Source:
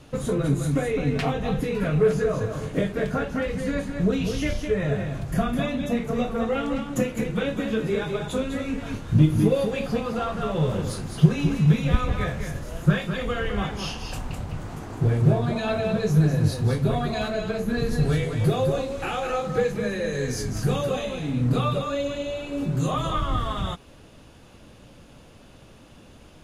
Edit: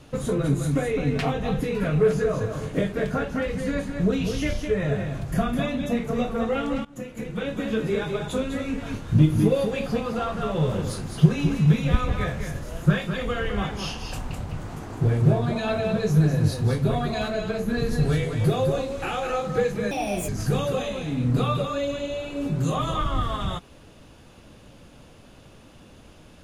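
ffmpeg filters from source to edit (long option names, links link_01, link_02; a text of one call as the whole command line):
ffmpeg -i in.wav -filter_complex "[0:a]asplit=4[link_01][link_02][link_03][link_04];[link_01]atrim=end=6.85,asetpts=PTS-STARTPTS,afade=type=out:start_time=6.846:duration=0.004:curve=hsin:silence=0.1[link_05];[link_02]atrim=start=6.85:end=19.914,asetpts=PTS-STARTPTS,afade=type=in:duration=0.9:silence=0.1[link_06];[link_03]atrim=start=19.91:end=20.45,asetpts=PTS-STARTPTS,asetrate=63504,aresample=44100[link_07];[link_04]atrim=start=20.446[link_08];[link_05][link_06]concat=n=2:v=0:a=1[link_09];[link_09][link_07]acrossfade=duration=0.004:curve1=hsin:curve2=hsin[link_10];[link_10][link_08]acrossfade=duration=0.004:curve1=hsin:curve2=hsin" out.wav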